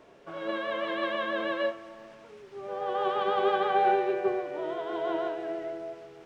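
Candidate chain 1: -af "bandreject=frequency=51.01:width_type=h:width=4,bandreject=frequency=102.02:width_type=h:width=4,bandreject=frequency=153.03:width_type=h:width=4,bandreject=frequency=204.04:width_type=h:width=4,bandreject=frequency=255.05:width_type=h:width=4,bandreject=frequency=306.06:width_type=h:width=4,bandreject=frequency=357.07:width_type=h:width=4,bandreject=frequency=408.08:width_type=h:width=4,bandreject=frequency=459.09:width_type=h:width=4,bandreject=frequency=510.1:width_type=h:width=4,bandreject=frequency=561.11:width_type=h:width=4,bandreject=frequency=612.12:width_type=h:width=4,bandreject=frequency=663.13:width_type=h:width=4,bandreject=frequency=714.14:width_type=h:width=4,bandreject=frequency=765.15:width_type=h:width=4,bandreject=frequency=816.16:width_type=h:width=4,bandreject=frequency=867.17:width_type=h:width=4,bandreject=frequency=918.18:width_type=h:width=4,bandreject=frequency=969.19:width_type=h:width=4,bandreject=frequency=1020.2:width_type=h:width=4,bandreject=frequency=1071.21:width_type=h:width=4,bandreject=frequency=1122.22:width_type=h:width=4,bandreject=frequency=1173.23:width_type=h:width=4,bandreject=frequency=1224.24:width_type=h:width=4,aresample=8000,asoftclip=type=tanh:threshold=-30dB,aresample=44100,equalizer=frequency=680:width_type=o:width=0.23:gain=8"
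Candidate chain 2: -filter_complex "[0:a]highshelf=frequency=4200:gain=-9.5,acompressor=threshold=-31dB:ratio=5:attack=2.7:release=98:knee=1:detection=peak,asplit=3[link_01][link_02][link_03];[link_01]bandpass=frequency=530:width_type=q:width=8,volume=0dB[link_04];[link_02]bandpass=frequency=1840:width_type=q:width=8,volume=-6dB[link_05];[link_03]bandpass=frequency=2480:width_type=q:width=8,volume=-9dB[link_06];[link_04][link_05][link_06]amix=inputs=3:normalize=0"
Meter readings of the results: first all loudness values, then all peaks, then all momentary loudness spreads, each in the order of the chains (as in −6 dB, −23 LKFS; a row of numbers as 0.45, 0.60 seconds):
−33.0, −44.5 LKFS; −23.0, −32.0 dBFS; 13, 12 LU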